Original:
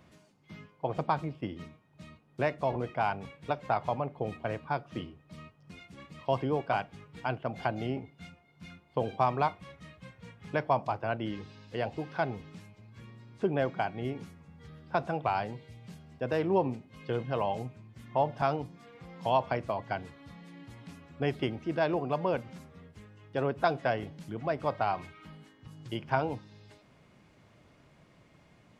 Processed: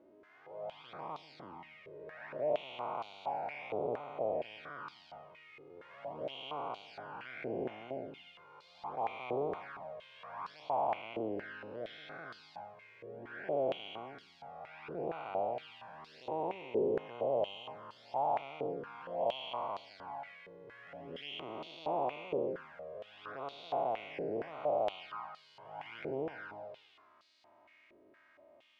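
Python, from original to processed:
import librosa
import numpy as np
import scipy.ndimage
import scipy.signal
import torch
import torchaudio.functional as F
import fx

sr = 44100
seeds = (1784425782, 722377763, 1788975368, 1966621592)

y = fx.spec_blur(x, sr, span_ms=602.0)
y = fx.env_flanger(y, sr, rest_ms=3.7, full_db=-34.5)
y = fx.filter_held_bandpass(y, sr, hz=4.3, low_hz=430.0, high_hz=4300.0)
y = y * 10.0 ** (13.5 / 20.0)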